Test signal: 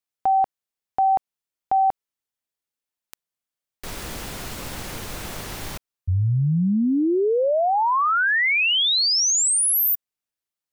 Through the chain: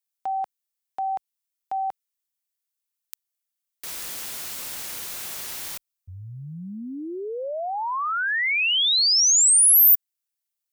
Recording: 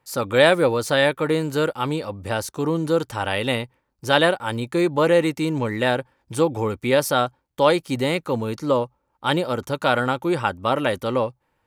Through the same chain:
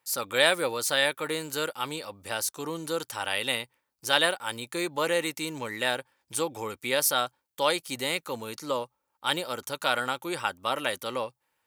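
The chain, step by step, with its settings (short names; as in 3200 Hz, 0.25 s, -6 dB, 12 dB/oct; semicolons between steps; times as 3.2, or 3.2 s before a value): tilt +3.5 dB/oct; gain -7 dB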